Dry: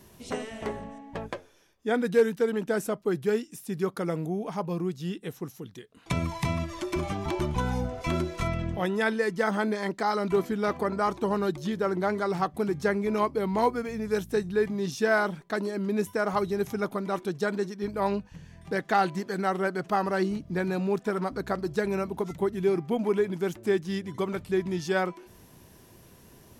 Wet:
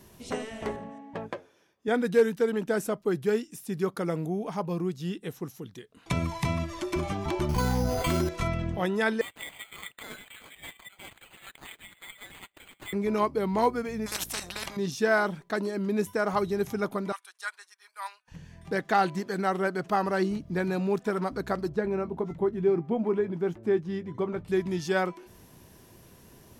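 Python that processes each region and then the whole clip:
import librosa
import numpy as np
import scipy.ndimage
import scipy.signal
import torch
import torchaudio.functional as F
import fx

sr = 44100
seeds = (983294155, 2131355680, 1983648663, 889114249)

y = fx.chain(x, sr, fx.highpass(hz=120.0, slope=12),
    fx.high_shelf(hz=3900.0, db=-8.5), at=(0.76, 1.88))
y = fx.chain(y, sr, fx.resample_bad(factor=8, down='none', up='hold'),
    fx.env_flatten(amount_pct=70), at=(7.49, 8.29))
y = fx.chain(y, sr, fx.brickwall_highpass(low_hz=1900.0),
    fx.resample_bad(factor=8, down='none', up='hold'), at=(9.21, 12.93))
y = fx.chain(y, sr, fx.level_steps(step_db=13),
    fx.spectral_comp(ratio=10.0), at=(14.06, 14.77))
y = fx.chain(y, sr, fx.highpass(hz=1100.0, slope=24),
    fx.peak_eq(hz=9500.0, db=13.0, octaves=0.29),
    fx.upward_expand(threshold_db=-56.0, expansion=1.5), at=(17.12, 18.28))
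y = fx.chain(y, sr, fx.lowpass(hz=1100.0, slope=6),
    fx.doubler(ms=18.0, db=-12), at=(21.69, 24.48))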